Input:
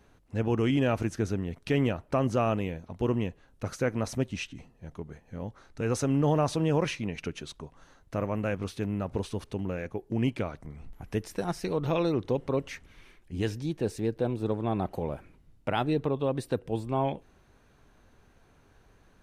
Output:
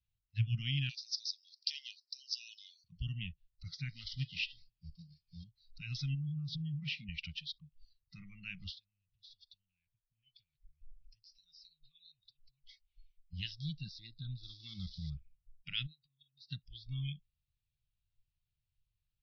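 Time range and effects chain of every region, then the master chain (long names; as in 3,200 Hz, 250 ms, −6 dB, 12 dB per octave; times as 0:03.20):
0:00.89–0:02.84: inverse Chebyshev high-pass filter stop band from 560 Hz, stop band 70 dB + high shelf with overshoot 3,800 Hz +10 dB, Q 3
0:03.89–0:05.44: variable-slope delta modulation 32 kbit/s + hum removal 195.5 Hz, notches 27
0:06.14–0:07.09: high-pass filter 110 Hz + spectral tilt −2 dB per octave + downward compressor 16 to 1, threshold −27 dBFS
0:08.76–0:13.33: parametric band 280 Hz −14.5 dB 2.9 octaves + downward compressor 5 to 1, threshold −46 dBFS + flanger 1.4 Hz, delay 3.9 ms, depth 2.6 ms, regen −39%
0:14.43–0:15.10: spike at every zero crossing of −32 dBFS + low-shelf EQ 140 Hz +2 dB
0:15.86–0:16.51: high-pass filter 340 Hz 6 dB per octave + parametric band 1,700 Hz −8 dB 2.1 octaves + downward compressor 16 to 1, threshold −41 dBFS
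whole clip: elliptic band-stop filter 130–2,800 Hz, stop band 60 dB; noise reduction from a noise print of the clip's start 26 dB; Butterworth low-pass 5,300 Hz 96 dB per octave; level +3 dB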